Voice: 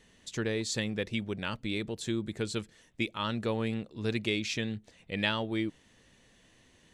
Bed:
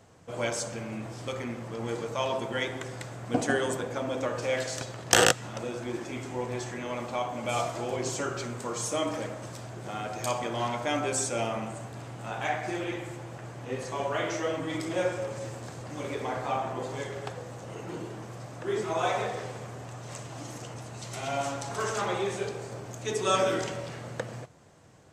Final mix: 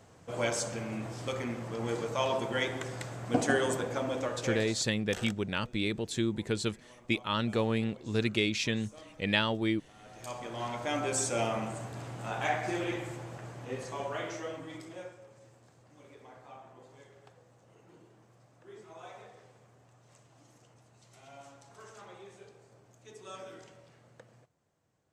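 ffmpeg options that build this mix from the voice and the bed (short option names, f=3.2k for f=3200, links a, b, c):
-filter_complex "[0:a]adelay=4100,volume=2dB[a];[1:a]volume=22dB,afade=t=out:st=3.98:d=0.97:silence=0.0749894,afade=t=in:st=9.97:d=1.43:silence=0.0749894,afade=t=out:st=12.92:d=2.25:silence=0.1[b];[a][b]amix=inputs=2:normalize=0"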